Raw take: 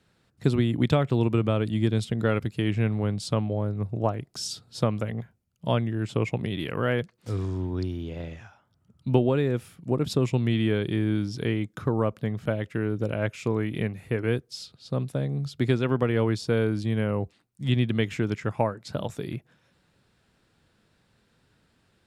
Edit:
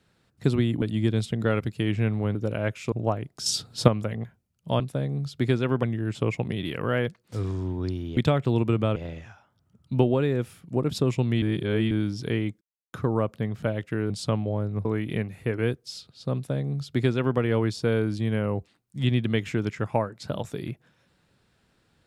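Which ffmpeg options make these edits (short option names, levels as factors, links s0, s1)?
-filter_complex "[0:a]asplit=15[s0][s1][s2][s3][s4][s5][s6][s7][s8][s9][s10][s11][s12][s13][s14];[s0]atrim=end=0.822[s15];[s1]atrim=start=1.608:end=3.142[s16];[s2]atrim=start=12.928:end=13.502[s17];[s3]atrim=start=3.888:end=4.432[s18];[s4]atrim=start=4.428:end=4.852,asetpts=PTS-STARTPTS,volume=2.37[s19];[s5]atrim=start=4.848:end=5.772[s20];[s6]atrim=start=14.998:end=16.032[s21];[s7]atrim=start=5.768:end=8.112[s22];[s8]atrim=start=0.818:end=1.612[s23];[s9]atrim=start=8.108:end=10.572[s24];[s10]atrim=start=10.568:end=11.062,asetpts=PTS-STARTPTS,areverse[s25];[s11]atrim=start=11.058:end=11.76,asetpts=PTS-STARTPTS,afade=t=out:st=0.698:d=0.004:c=hsin,apad=pad_dur=0.32[s26];[s12]atrim=start=11.76:end=12.932,asetpts=PTS-STARTPTS,afade=t=in:d=0.004:c=hsin[s27];[s13]atrim=start=3.138:end=3.892[s28];[s14]atrim=start=13.498[s29];[s15][s16]acrossfade=d=0.004:c1=hsin:c2=hsin[s30];[s30][s17]acrossfade=d=0.004:c1=hsin:c2=hsin[s31];[s31][s18]acrossfade=d=0.004:c1=hsin:c2=hsin[s32];[s32][s19]acrossfade=d=0.004:c1=hsin:c2=hsin[s33];[s33][s20]acrossfade=d=0.004:c1=hsin:c2=hsin[s34];[s34][s21]acrossfade=d=0.004:c1=hsin:c2=hsin[s35];[s35][s22]acrossfade=d=0.004:c1=hsin:c2=hsin[s36];[s36][s23]acrossfade=d=0.004:c1=hsin:c2=hsin[s37];[s37][s24]acrossfade=d=0.004:c1=hsin:c2=hsin[s38];[s38][s25]acrossfade=d=0.004:c1=hsin:c2=hsin[s39];[s26][s27]concat=n=2:v=0:a=1[s40];[s39][s40]acrossfade=d=0.004:c1=hsin:c2=hsin[s41];[s41][s28]acrossfade=d=0.004:c1=hsin:c2=hsin[s42];[s42][s29]acrossfade=d=0.004:c1=hsin:c2=hsin"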